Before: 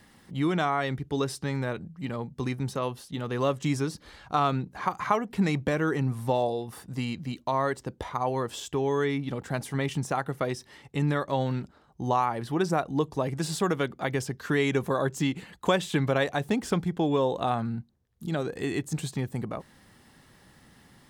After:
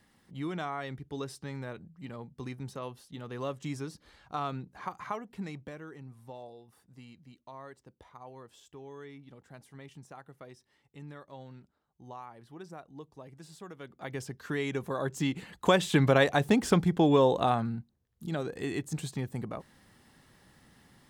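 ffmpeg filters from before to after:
-af "volume=13dB,afade=t=out:st=4.86:d=1.03:silence=0.298538,afade=t=in:st=13.78:d=0.47:silence=0.237137,afade=t=in:st=14.89:d=1.18:silence=0.316228,afade=t=out:st=17.32:d=0.47:silence=0.473151"

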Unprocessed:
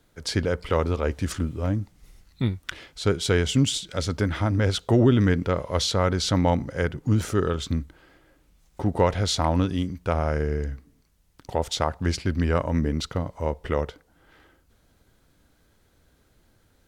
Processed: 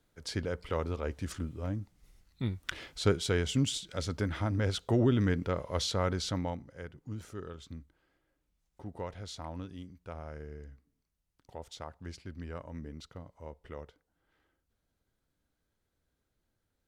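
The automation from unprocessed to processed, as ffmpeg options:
-af "volume=-1dB,afade=t=in:st=2.42:d=0.45:silence=0.354813,afade=t=out:st=2.87:d=0.41:silence=0.446684,afade=t=out:st=6.12:d=0.5:silence=0.281838"

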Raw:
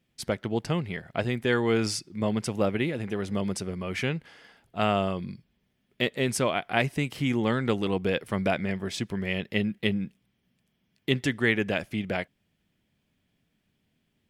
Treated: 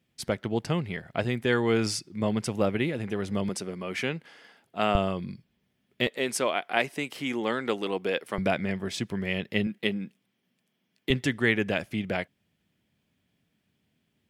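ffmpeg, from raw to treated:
-af "asetnsamples=n=441:p=0,asendcmd='3.49 highpass f 190;4.95 highpass f 74;6.07 highpass f 310;8.38 highpass f 82;9.67 highpass f 210;11.1 highpass f 62',highpass=50"

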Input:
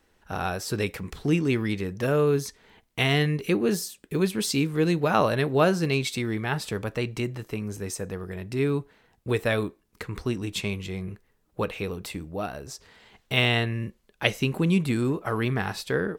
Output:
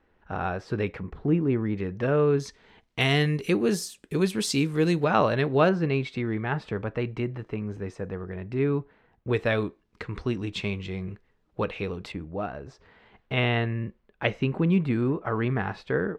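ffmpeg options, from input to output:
-af "asetnsamples=n=441:p=0,asendcmd='1.03 lowpass f 1200;1.77 lowpass f 2500;2.4 lowpass f 5100;3.01 lowpass f 10000;5.04 lowpass f 4000;5.69 lowpass f 2100;9.33 lowpass f 3900;12.12 lowpass f 2100',lowpass=2.1k"

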